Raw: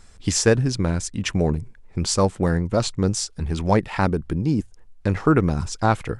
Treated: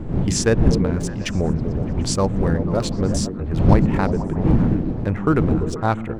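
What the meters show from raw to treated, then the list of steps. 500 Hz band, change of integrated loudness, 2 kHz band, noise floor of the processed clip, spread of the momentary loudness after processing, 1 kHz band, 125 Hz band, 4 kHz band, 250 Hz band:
+0.5 dB, +2.0 dB, -1.5 dB, -28 dBFS, 7 LU, -0.5 dB, +3.5 dB, -2.0 dB, +3.5 dB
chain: Wiener smoothing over 9 samples; wind noise 170 Hz -21 dBFS; on a send: delay with a stepping band-pass 0.122 s, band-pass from 200 Hz, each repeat 0.7 oct, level -2.5 dB; on the sum: gain -1 dB

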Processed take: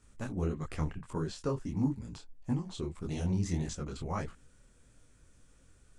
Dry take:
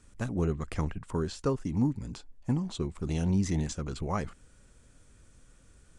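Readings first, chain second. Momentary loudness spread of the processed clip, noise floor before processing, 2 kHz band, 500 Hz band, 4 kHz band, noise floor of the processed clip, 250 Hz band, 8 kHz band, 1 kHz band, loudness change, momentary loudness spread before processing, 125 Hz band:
8 LU, -60 dBFS, -4.0 dB, -4.5 dB, -3.5 dB, -63 dBFS, -4.0 dB, -3.5 dB, -3.5 dB, -4.0 dB, 7 LU, -3.5 dB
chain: detuned doubles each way 56 cents

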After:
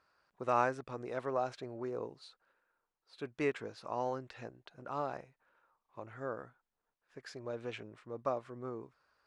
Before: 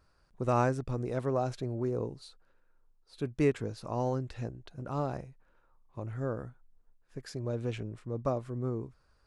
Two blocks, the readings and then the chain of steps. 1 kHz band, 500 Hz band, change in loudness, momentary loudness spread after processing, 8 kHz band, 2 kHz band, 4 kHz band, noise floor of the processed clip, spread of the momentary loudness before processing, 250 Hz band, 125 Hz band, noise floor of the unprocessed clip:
-0.5 dB, -4.5 dB, -5.0 dB, 17 LU, n/a, +1.0 dB, -2.5 dB, under -85 dBFS, 16 LU, -9.0 dB, -15.5 dB, -69 dBFS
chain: band-pass 1600 Hz, Q 0.53; gain +1 dB

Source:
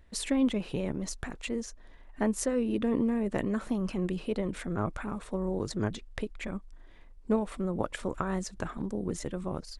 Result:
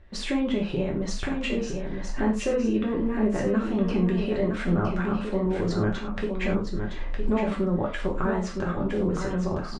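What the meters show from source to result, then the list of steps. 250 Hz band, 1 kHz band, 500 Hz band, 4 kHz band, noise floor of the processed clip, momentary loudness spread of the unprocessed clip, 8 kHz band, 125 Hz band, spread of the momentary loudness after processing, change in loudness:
+5.5 dB, +5.5 dB, +6.5 dB, +5.0 dB, -33 dBFS, 10 LU, n/a, +7.5 dB, 6 LU, +5.5 dB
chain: recorder AGC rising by 21 dB/s; high shelf 7400 Hz -11 dB; in parallel at +2 dB: limiter -23.5 dBFS, peak gain reduction 11.5 dB; on the sum: air absorption 92 m; on a send: echo 0.963 s -6 dB; on the sum: non-linear reverb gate 0.13 s falling, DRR -1.5 dB; gain -4 dB

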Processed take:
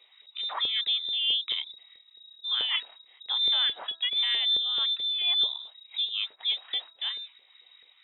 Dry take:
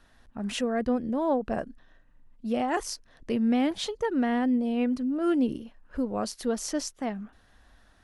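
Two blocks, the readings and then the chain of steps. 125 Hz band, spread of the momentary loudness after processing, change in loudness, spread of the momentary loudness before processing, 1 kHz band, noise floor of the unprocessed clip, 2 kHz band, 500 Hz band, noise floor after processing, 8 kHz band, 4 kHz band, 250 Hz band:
n/a, 14 LU, +2.5 dB, 14 LU, -10.0 dB, -61 dBFS, +1.5 dB, -23.5 dB, -60 dBFS, under -35 dB, +18.5 dB, under -35 dB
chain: inverted band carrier 3800 Hz; LFO high-pass saw up 4.6 Hz 440–1700 Hz; de-hum 331.1 Hz, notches 5; gain -2 dB

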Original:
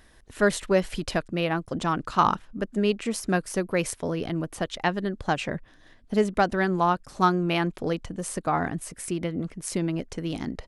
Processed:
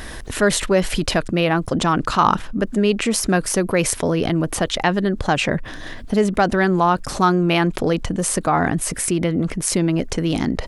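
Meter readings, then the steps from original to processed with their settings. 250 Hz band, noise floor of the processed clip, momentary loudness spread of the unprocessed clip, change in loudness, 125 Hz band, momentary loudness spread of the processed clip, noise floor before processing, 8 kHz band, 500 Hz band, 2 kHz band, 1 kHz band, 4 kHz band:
+8.0 dB, -33 dBFS, 9 LU, +7.5 dB, +8.5 dB, 4 LU, -55 dBFS, +12.5 dB, +6.5 dB, +7.0 dB, +6.0 dB, +10.0 dB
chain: fast leveller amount 50%; gain +3.5 dB

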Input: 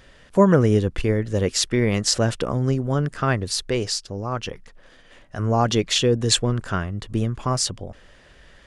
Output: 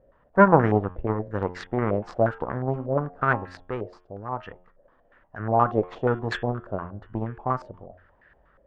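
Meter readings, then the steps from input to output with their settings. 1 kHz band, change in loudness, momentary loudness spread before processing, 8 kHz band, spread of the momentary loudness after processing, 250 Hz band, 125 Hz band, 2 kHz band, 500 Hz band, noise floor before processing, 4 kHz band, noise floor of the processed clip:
+3.0 dB, -3.5 dB, 10 LU, under -30 dB, 15 LU, -5.0 dB, -6.5 dB, 0.0 dB, -2.0 dB, -51 dBFS, -22.5 dB, -62 dBFS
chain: added harmonics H 3 -16 dB, 7 -28 dB, 8 -38 dB, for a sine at -1.5 dBFS; de-hum 89.64 Hz, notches 39; stepped low-pass 8.4 Hz 590–1700 Hz; gain +1 dB

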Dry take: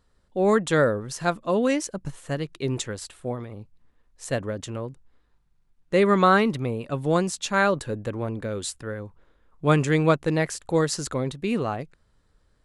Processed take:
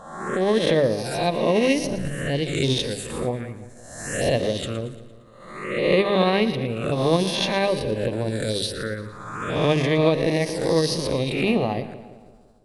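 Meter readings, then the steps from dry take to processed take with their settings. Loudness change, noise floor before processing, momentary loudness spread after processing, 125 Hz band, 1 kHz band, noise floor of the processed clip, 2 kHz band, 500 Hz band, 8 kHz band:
+2.0 dB, -66 dBFS, 13 LU, +1.5 dB, -1.5 dB, -47 dBFS, 0.0 dB, +3.0 dB, 0.0 dB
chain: spectral swells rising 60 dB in 1.10 s; low shelf 440 Hz -2.5 dB; notches 50/100/150/200/250/300/350/400 Hz; AGC gain up to 7.5 dB; tremolo 14 Hz, depth 36%; envelope phaser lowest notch 360 Hz, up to 1400 Hz, full sweep at -19 dBFS; split-band echo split 830 Hz, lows 0.169 s, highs 0.115 s, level -14 dB; backwards sustainer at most 57 dB/s

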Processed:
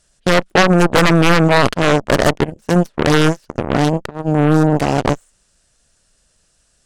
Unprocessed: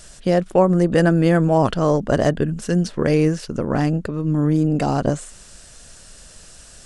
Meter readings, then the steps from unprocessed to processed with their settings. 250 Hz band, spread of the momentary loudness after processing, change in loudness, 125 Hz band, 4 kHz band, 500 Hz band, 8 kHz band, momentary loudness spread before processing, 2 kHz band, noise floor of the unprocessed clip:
+3.0 dB, 8 LU, +4.0 dB, +2.5 dB, +13.5 dB, +3.0 dB, +7.5 dB, 7 LU, +11.5 dB, -45 dBFS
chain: added harmonics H 3 -24 dB, 5 -43 dB, 7 -18 dB, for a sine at -2.5 dBFS; sine folder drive 14 dB, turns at 0.5 dBFS; gain -4.5 dB

